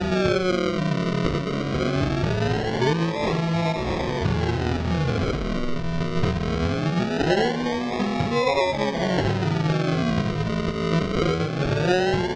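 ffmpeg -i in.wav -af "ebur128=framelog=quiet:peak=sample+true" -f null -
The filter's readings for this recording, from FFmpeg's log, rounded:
Integrated loudness:
  I:         -23.6 LUFS
  Threshold: -33.6 LUFS
Loudness range:
  LRA:         1.9 LU
  Threshold: -43.7 LUFS
  LRA low:   -24.8 LUFS
  LRA high:  -22.9 LUFS
Sample peak:
  Peak:       -8.4 dBFS
True peak:
  Peak:       -8.4 dBFS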